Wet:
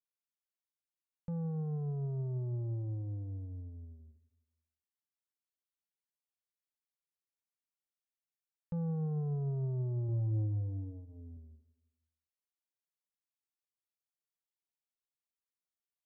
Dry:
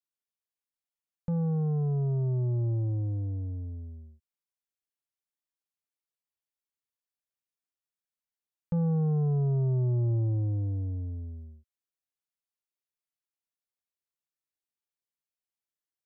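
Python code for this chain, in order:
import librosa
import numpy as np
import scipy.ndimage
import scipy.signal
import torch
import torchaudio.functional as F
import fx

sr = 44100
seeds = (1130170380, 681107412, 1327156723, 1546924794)

p1 = fx.doubler(x, sr, ms=28.0, db=-4, at=(10.06, 11.37))
p2 = p1 + fx.echo_feedback(p1, sr, ms=163, feedback_pct=47, wet_db=-20, dry=0)
y = p2 * librosa.db_to_amplitude(-8.5)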